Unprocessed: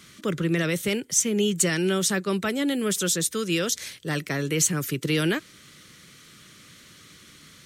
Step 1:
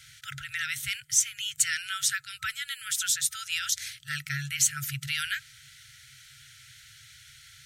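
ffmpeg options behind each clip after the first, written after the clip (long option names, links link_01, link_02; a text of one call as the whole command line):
ffmpeg -i in.wav -af "afftfilt=real='re*(1-between(b*sr/4096,150,1300))':imag='im*(1-between(b*sr/4096,150,1300))':win_size=4096:overlap=0.75,volume=-1dB" out.wav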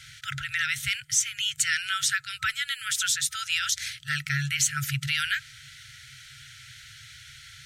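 ffmpeg -i in.wav -filter_complex "[0:a]highshelf=frequency=8300:gain=-10.5,asplit=2[link_01][link_02];[link_02]alimiter=limit=-23dB:level=0:latency=1:release=127,volume=1dB[link_03];[link_01][link_03]amix=inputs=2:normalize=0" out.wav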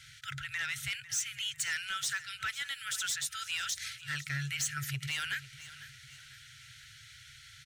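ffmpeg -i in.wav -af "asoftclip=type=tanh:threshold=-20dB,aecho=1:1:499|998|1497|1996:0.158|0.0682|0.0293|0.0126,volume=-6.5dB" out.wav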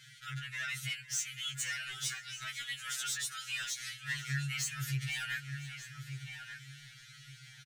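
ffmpeg -i in.wav -filter_complex "[0:a]asplit=2[link_01][link_02];[link_02]adelay=1187,lowpass=frequency=2500:poles=1,volume=-7dB,asplit=2[link_03][link_04];[link_04]adelay=1187,lowpass=frequency=2500:poles=1,volume=0.24,asplit=2[link_05][link_06];[link_06]adelay=1187,lowpass=frequency=2500:poles=1,volume=0.24[link_07];[link_01][link_03][link_05][link_07]amix=inputs=4:normalize=0,afftfilt=real='re*2.45*eq(mod(b,6),0)':imag='im*2.45*eq(mod(b,6),0)':win_size=2048:overlap=0.75" out.wav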